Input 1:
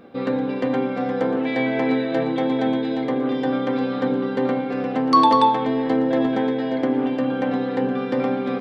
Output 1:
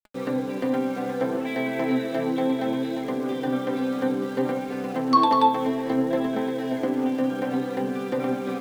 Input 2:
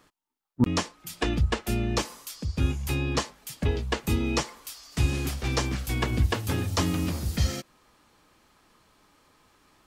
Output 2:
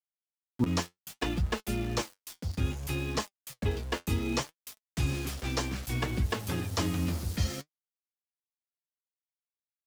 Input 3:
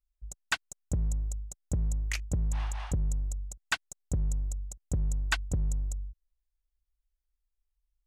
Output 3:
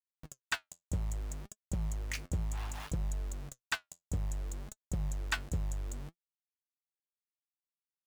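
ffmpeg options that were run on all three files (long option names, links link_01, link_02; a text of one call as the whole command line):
ffmpeg -i in.wav -af "aeval=exprs='val(0)*gte(abs(val(0)),0.015)':channel_layout=same,flanger=delay=4.6:depth=7.1:regen=57:speed=0.63:shape=sinusoidal" out.wav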